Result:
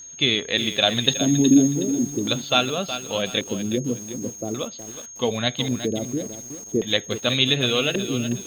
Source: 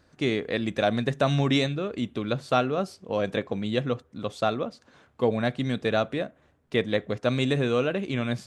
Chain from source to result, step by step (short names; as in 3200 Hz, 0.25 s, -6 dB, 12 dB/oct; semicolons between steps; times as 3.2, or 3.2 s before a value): bin magnitudes rounded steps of 15 dB; bell 3600 Hz +10.5 dB 0.85 oct; LFO low-pass square 0.44 Hz 340–3300 Hz; whine 6500 Hz -38 dBFS; 1.08–1.68 graphic EQ 125/250/500/1000/2000/4000/8000 Hz -4/+7/-4/+5/-7/+9/+10 dB; lo-fi delay 0.368 s, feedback 35%, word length 6-bit, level -10 dB